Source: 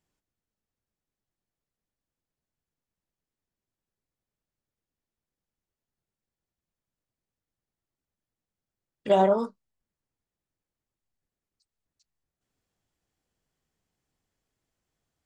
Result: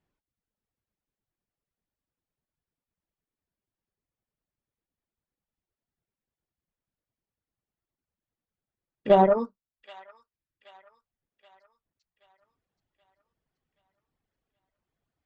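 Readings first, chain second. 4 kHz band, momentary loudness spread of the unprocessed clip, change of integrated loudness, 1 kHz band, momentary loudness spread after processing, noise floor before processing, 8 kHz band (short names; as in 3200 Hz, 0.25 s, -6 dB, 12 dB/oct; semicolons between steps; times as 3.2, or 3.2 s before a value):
-1.5 dB, 17 LU, +2.0 dB, +2.5 dB, 20 LU, under -85 dBFS, n/a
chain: reverb removal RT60 0.99 s; added harmonics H 4 -21 dB, 6 -30 dB, 7 -32 dB, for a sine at -9.5 dBFS; Bessel low-pass 2500 Hz, order 2; on a send: thin delay 0.777 s, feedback 48%, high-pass 1900 Hz, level -11.5 dB; on the sum: gain +3.5 dB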